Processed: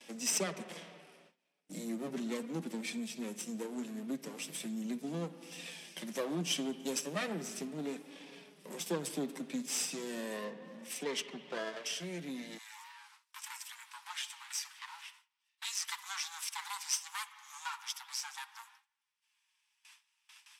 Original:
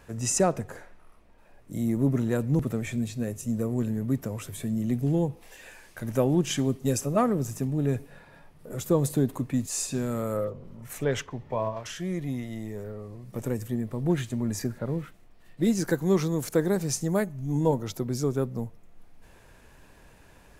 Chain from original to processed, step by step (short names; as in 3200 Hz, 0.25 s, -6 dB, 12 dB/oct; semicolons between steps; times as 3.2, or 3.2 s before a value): minimum comb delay 0.36 ms; spring tank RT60 1.8 s, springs 52/57 ms, chirp 35 ms, DRR 13.5 dB; flange 0.37 Hz, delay 3.4 ms, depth 4.4 ms, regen -31%; steep high-pass 160 Hz 96 dB/oct, from 12.57 s 850 Hz; gate with hold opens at -54 dBFS; LPF 9700 Hz 12 dB/oct; high shelf 7100 Hz +11 dB; compressor 1.5:1, threshold -49 dBFS, peak gain reduction 10 dB; bell 3800 Hz +9.5 dB 2.1 oct